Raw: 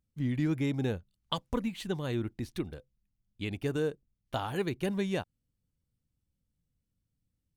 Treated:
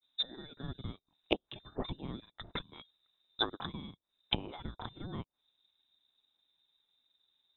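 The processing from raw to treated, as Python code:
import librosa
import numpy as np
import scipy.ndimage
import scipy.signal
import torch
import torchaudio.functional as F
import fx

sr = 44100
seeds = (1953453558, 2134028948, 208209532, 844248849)

p1 = scipy.signal.sosfilt(scipy.signal.butter(2, 130.0, 'highpass', fs=sr, output='sos'), x)
p2 = fx.notch(p1, sr, hz=1800.0, q=21.0)
p3 = fx.freq_invert(p2, sr, carrier_hz=3800)
p4 = fx.rider(p3, sr, range_db=3, speed_s=2.0)
p5 = p3 + (p4 * librosa.db_to_amplitude(2.5))
p6 = fx.env_lowpass_down(p5, sr, base_hz=400.0, full_db=-24.5)
p7 = fx.granulator(p6, sr, seeds[0], grain_ms=100.0, per_s=20.0, spray_ms=22.0, spread_st=0)
y = p7 * librosa.db_to_amplitude(5.5)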